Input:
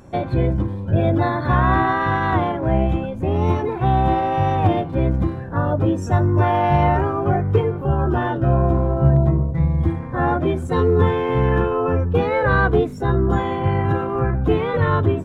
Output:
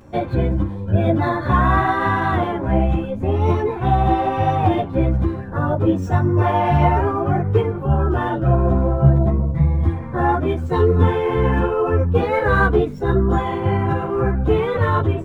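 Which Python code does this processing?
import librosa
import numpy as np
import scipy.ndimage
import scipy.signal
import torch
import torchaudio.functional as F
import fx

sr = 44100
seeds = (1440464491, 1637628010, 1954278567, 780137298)

y = scipy.ndimage.median_filter(x, 5, mode='constant')
y = fx.ensemble(y, sr)
y = y * 10.0 ** (3.5 / 20.0)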